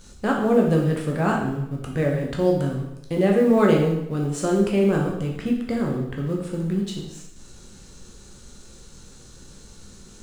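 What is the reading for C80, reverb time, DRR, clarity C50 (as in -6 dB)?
7.0 dB, 0.80 s, -1.0 dB, 4.5 dB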